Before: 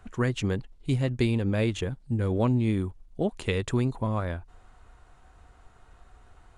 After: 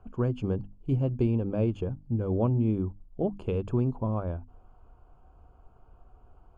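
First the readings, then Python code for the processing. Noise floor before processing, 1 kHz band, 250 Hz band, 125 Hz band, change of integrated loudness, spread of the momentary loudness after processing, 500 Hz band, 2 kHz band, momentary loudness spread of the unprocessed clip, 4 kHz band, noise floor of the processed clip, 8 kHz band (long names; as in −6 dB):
−57 dBFS, −4.0 dB, −1.0 dB, −1.0 dB, −1.5 dB, 7 LU, −1.0 dB, −15.5 dB, 8 LU, below −15 dB, −58 dBFS, below −20 dB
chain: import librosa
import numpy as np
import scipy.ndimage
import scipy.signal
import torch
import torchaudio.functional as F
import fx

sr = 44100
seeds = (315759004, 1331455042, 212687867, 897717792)

y = np.convolve(x, np.full(23, 1.0 / 23))[:len(x)]
y = fx.hum_notches(y, sr, base_hz=50, count=6)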